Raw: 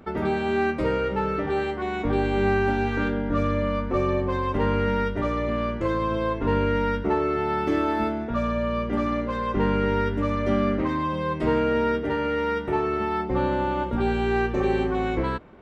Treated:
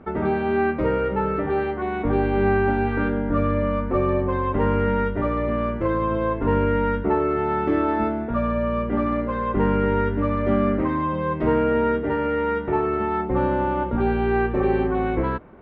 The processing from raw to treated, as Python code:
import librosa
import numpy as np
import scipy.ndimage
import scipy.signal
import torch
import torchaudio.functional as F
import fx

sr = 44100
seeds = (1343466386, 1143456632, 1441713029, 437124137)

y = scipy.signal.sosfilt(scipy.signal.butter(2, 2000.0, 'lowpass', fs=sr, output='sos'), x)
y = F.gain(torch.from_numpy(y), 2.5).numpy()